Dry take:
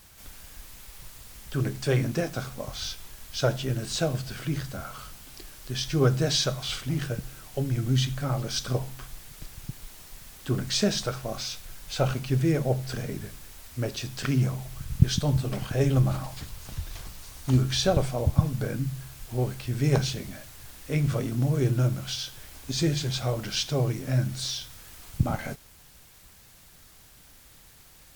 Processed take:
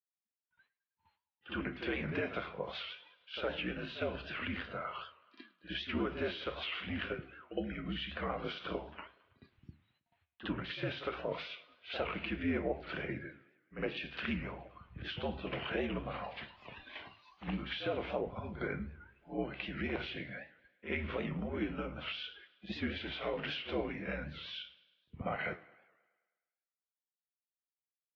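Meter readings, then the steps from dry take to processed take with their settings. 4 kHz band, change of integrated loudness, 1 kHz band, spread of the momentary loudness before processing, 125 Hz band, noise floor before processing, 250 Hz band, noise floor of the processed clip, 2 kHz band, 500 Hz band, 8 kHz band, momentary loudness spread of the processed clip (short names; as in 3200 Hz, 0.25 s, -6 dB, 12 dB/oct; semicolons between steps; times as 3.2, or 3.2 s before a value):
-10.5 dB, -11.5 dB, -5.5 dB, 20 LU, -20.5 dB, -53 dBFS, -9.5 dB, under -85 dBFS, -1.5 dB, -8.5 dB, under -35 dB, 13 LU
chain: spectral noise reduction 28 dB; gate -52 dBFS, range -36 dB; tilt shelf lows -6.5 dB, about 880 Hz; pre-echo 61 ms -13 dB; limiter -18 dBFS, peak gain reduction 10.5 dB; compressor, threshold -29 dBFS, peak gain reduction 7 dB; flange 1.3 Hz, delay 8.8 ms, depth 7.1 ms, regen +80%; on a send: thinning echo 0.105 s, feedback 59%, high-pass 180 Hz, level -21 dB; on the sum: mistuned SSB -67 Hz 200–3000 Hz; dynamic EQ 1200 Hz, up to -4 dB, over -59 dBFS, Q 1.8; record warp 78 rpm, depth 160 cents; gain +5 dB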